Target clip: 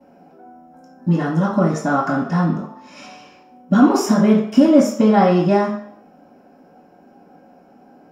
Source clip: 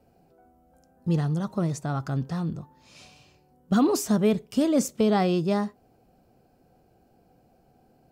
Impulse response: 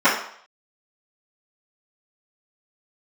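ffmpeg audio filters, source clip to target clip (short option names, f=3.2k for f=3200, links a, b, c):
-filter_complex "[0:a]acompressor=threshold=-23dB:ratio=6[a];[1:a]atrim=start_sample=2205[b];[a][b]afir=irnorm=-1:irlink=0,volume=-8dB"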